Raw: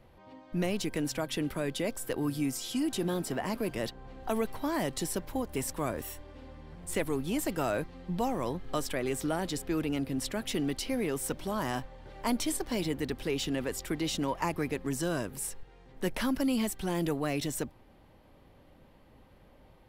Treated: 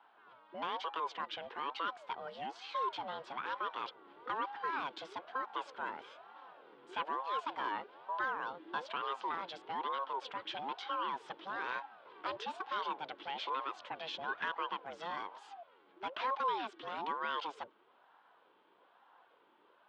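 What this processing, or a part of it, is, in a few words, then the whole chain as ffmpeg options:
voice changer toy: -af "aeval=exprs='val(0)*sin(2*PI*570*n/s+570*0.45/1.1*sin(2*PI*1.1*n/s))':channel_layout=same,highpass=410,equalizer=frequency=630:width_type=q:width=4:gain=-5,equalizer=frequency=1000:width_type=q:width=4:gain=7,equalizer=frequency=1500:width_type=q:width=4:gain=7,equalizer=frequency=3200:width_type=q:width=4:gain=8,lowpass=frequency=4100:width=0.5412,lowpass=frequency=4100:width=1.3066,volume=-6dB"

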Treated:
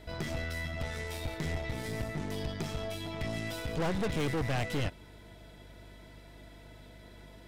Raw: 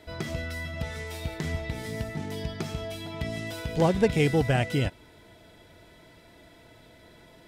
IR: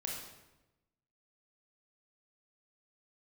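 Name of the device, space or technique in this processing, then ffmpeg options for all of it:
valve amplifier with mains hum: -af "aeval=exprs='(tanh(31.6*val(0)+0.55)-tanh(0.55))/31.6':channel_layout=same,aeval=exprs='val(0)+0.002*(sin(2*PI*50*n/s)+sin(2*PI*2*50*n/s)/2+sin(2*PI*3*50*n/s)/3+sin(2*PI*4*50*n/s)/4+sin(2*PI*5*50*n/s)/5)':channel_layout=same,volume=1dB"

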